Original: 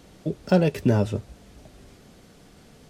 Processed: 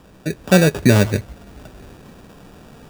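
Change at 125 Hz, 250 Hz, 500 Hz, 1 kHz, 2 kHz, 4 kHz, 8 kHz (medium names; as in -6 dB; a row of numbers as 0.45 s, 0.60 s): +7.0 dB, +7.0 dB, +6.0 dB, +6.0 dB, +14.5 dB, +14.0 dB, +19.0 dB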